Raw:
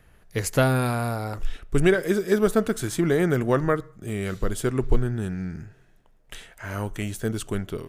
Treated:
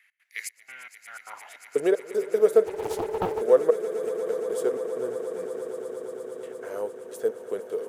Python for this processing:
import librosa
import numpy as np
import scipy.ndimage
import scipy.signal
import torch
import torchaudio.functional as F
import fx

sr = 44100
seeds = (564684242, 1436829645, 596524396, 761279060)

p1 = fx.delta_mod(x, sr, bps=16000, step_db=-36.5, at=(0.52, 1.49))
p2 = fx.dynamic_eq(p1, sr, hz=2300.0, q=0.71, threshold_db=-43.0, ratio=4.0, max_db=-6)
p3 = fx.step_gate(p2, sr, bpm=154, pattern='x.xxx..xx..', floor_db=-24.0, edge_ms=4.5)
p4 = fx.filter_sweep_highpass(p3, sr, from_hz=2100.0, to_hz=480.0, start_s=1.03, end_s=1.66, q=7.3)
p5 = p4 + fx.echo_swell(p4, sr, ms=116, loudest=8, wet_db=-16, dry=0)
p6 = fx.doppler_dist(p5, sr, depth_ms=0.66, at=(2.65, 3.41))
y = F.gain(torch.from_numpy(p6), -6.5).numpy()